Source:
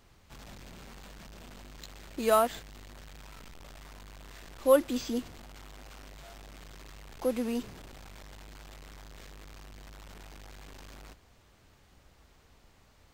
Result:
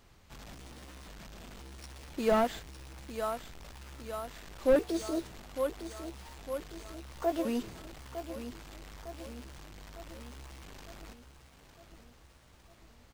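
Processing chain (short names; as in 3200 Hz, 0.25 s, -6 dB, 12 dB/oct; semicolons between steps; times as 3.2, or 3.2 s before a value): trilling pitch shifter +5 st, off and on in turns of 0.532 s; feedback echo 0.906 s, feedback 56%, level -10.5 dB; slew limiter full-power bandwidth 56 Hz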